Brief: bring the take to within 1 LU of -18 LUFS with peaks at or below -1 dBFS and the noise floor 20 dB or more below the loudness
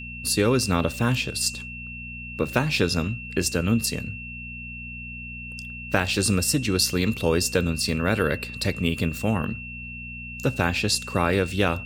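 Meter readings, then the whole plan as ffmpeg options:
hum 60 Hz; harmonics up to 240 Hz; hum level -37 dBFS; steady tone 2700 Hz; tone level -36 dBFS; loudness -24.5 LUFS; peak -5.5 dBFS; loudness target -18.0 LUFS
-> -af "bandreject=f=60:t=h:w=4,bandreject=f=120:t=h:w=4,bandreject=f=180:t=h:w=4,bandreject=f=240:t=h:w=4"
-af "bandreject=f=2.7k:w=30"
-af "volume=6.5dB,alimiter=limit=-1dB:level=0:latency=1"

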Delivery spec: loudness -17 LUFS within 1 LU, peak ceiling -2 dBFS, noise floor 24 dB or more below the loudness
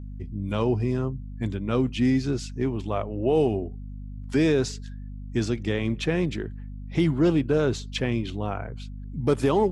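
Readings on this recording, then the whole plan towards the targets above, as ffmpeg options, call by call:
hum 50 Hz; harmonics up to 250 Hz; hum level -34 dBFS; loudness -26.0 LUFS; peak -9.5 dBFS; loudness target -17.0 LUFS
-> -af "bandreject=f=50:t=h:w=6,bandreject=f=100:t=h:w=6,bandreject=f=150:t=h:w=6,bandreject=f=200:t=h:w=6,bandreject=f=250:t=h:w=6"
-af "volume=9dB,alimiter=limit=-2dB:level=0:latency=1"

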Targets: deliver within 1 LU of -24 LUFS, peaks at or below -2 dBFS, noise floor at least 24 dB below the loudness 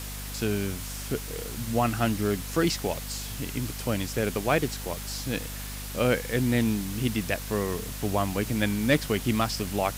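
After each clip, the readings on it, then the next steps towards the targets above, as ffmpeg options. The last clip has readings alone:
hum 50 Hz; harmonics up to 250 Hz; hum level -36 dBFS; noise floor -37 dBFS; noise floor target -52 dBFS; loudness -28.0 LUFS; peak -11.5 dBFS; loudness target -24.0 LUFS
-> -af "bandreject=f=50:t=h:w=4,bandreject=f=100:t=h:w=4,bandreject=f=150:t=h:w=4,bandreject=f=200:t=h:w=4,bandreject=f=250:t=h:w=4"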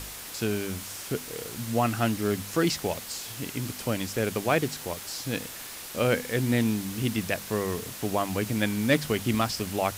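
hum none; noise floor -40 dBFS; noise floor target -53 dBFS
-> -af "afftdn=nr=13:nf=-40"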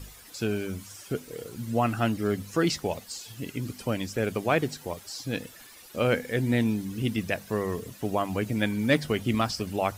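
noise floor -49 dBFS; noise floor target -53 dBFS
-> -af "afftdn=nr=6:nf=-49"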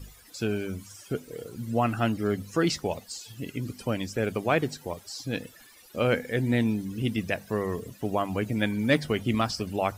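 noise floor -53 dBFS; loudness -29.0 LUFS; peak -12.0 dBFS; loudness target -24.0 LUFS
-> -af "volume=5dB"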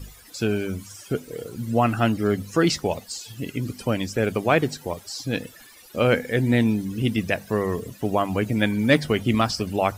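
loudness -24.0 LUFS; peak -7.0 dBFS; noise floor -48 dBFS

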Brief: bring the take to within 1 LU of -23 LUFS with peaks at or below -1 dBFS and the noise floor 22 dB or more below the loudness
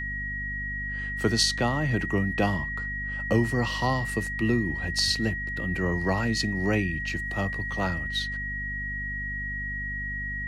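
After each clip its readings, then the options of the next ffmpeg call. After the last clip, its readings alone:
hum 50 Hz; harmonics up to 250 Hz; hum level -34 dBFS; steady tone 1900 Hz; tone level -31 dBFS; loudness -27.5 LUFS; peak -9.5 dBFS; loudness target -23.0 LUFS
-> -af "bandreject=f=50:t=h:w=4,bandreject=f=100:t=h:w=4,bandreject=f=150:t=h:w=4,bandreject=f=200:t=h:w=4,bandreject=f=250:t=h:w=4"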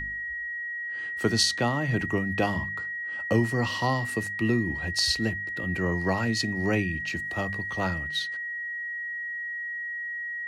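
hum none; steady tone 1900 Hz; tone level -31 dBFS
-> -af "bandreject=f=1.9k:w=30"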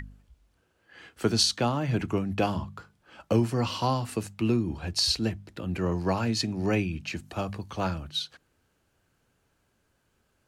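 steady tone none; loudness -28.5 LUFS; peak -10.5 dBFS; loudness target -23.0 LUFS
-> -af "volume=5.5dB"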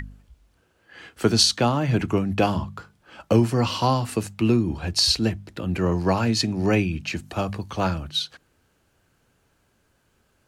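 loudness -23.0 LUFS; peak -5.0 dBFS; noise floor -67 dBFS

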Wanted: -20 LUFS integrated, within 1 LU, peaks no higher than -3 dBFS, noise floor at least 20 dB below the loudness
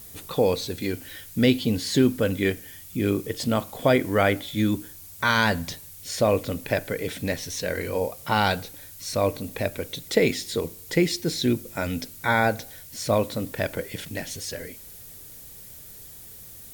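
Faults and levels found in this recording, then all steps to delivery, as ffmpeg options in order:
noise floor -44 dBFS; noise floor target -46 dBFS; loudness -25.5 LUFS; peak -6.0 dBFS; loudness target -20.0 LUFS
-> -af "afftdn=nr=6:nf=-44"
-af "volume=5.5dB,alimiter=limit=-3dB:level=0:latency=1"

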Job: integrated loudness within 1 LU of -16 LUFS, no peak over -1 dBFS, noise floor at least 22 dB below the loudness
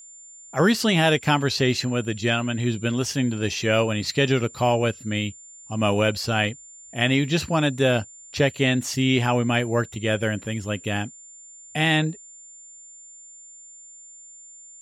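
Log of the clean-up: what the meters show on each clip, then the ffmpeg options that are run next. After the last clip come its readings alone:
steady tone 7200 Hz; tone level -43 dBFS; loudness -23.0 LUFS; peak -6.5 dBFS; loudness target -16.0 LUFS
-> -af "bandreject=f=7.2k:w=30"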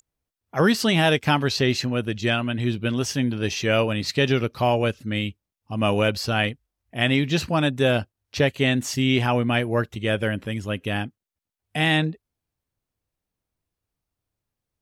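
steady tone none; loudness -23.0 LUFS; peak -7.0 dBFS; loudness target -16.0 LUFS
-> -af "volume=7dB,alimiter=limit=-1dB:level=0:latency=1"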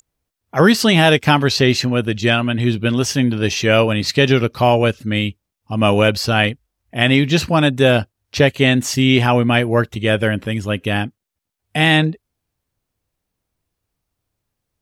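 loudness -16.0 LUFS; peak -1.0 dBFS; noise floor -80 dBFS

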